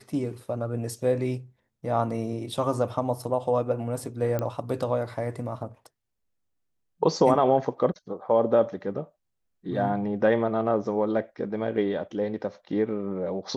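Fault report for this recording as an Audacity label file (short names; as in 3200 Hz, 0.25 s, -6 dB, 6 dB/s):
4.390000	4.390000	pop -16 dBFS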